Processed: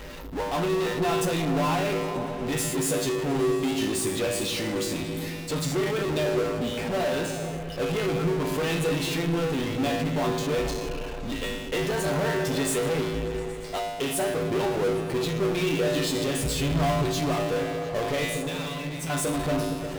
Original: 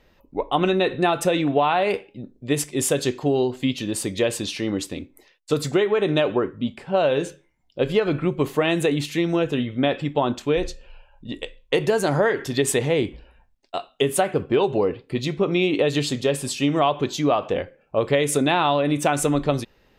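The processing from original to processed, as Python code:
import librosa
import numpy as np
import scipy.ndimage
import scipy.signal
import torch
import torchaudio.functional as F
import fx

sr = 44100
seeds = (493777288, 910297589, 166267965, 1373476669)

y = fx.octave_divider(x, sr, octaves=1, level_db=3.0, at=(16.42, 17.22))
y = fx.tone_stack(y, sr, knobs='6-0-2', at=(18.24, 19.1))
y = fx.comb_fb(y, sr, f0_hz=54.0, decay_s=0.49, harmonics='odd', damping=0.0, mix_pct=90)
y = fx.power_curve(y, sr, exponent=0.35)
y = fx.echo_opening(y, sr, ms=117, hz=200, octaves=1, feedback_pct=70, wet_db=-3)
y = F.gain(torch.from_numpy(y), -4.5).numpy()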